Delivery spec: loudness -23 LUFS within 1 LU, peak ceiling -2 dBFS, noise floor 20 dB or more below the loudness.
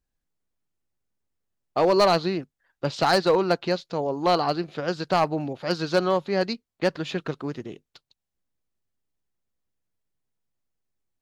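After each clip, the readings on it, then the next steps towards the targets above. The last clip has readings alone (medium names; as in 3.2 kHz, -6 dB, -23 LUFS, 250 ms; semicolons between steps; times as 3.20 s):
clipped samples 0.4%; clipping level -13.0 dBFS; loudness -24.5 LUFS; peak level -13.0 dBFS; loudness target -23.0 LUFS
-> clip repair -13 dBFS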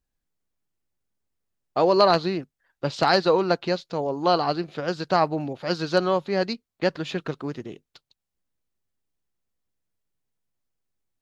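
clipped samples 0.0%; loudness -24.0 LUFS; peak level -4.5 dBFS; loudness target -23.0 LUFS
-> trim +1 dB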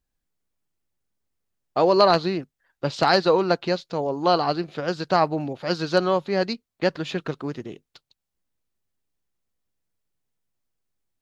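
loudness -23.0 LUFS; peak level -3.5 dBFS; noise floor -83 dBFS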